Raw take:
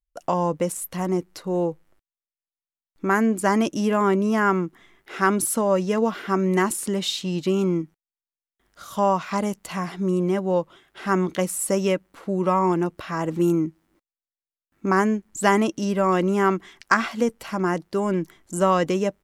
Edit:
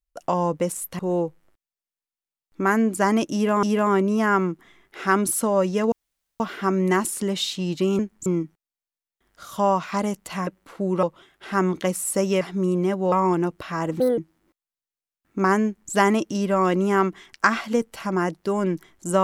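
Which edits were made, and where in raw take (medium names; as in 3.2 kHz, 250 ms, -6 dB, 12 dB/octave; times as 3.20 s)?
0.99–1.43 s: delete
3.77–4.07 s: loop, 2 plays
6.06 s: insert room tone 0.48 s
9.86–10.57 s: swap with 11.95–12.51 s
13.39–13.65 s: speed 147%
15.12–15.39 s: copy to 7.65 s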